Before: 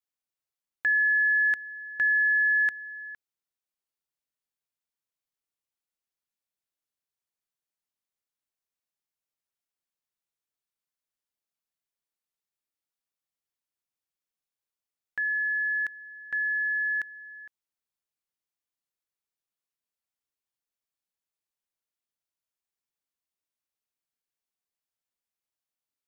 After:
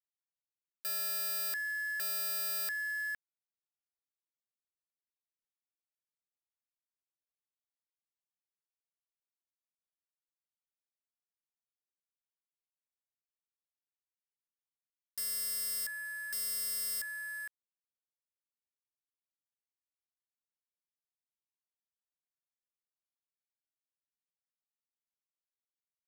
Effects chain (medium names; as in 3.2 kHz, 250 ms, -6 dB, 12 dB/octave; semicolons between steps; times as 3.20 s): integer overflow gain 32 dB; word length cut 8-bit, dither none; trim +2.5 dB